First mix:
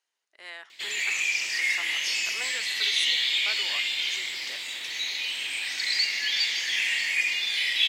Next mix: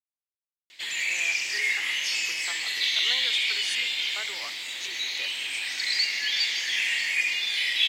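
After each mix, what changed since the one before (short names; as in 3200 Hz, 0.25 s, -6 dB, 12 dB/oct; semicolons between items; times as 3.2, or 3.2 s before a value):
speech: entry +0.70 s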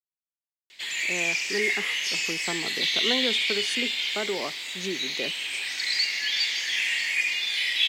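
speech: remove HPF 1400 Hz 12 dB/oct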